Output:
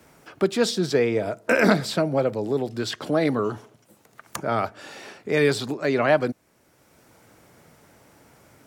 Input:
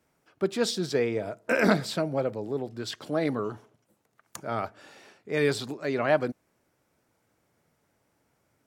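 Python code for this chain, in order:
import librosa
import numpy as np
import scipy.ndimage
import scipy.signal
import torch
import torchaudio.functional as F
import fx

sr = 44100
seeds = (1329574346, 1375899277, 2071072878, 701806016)

y = fx.band_squash(x, sr, depth_pct=40)
y = y * 10.0 ** (5.5 / 20.0)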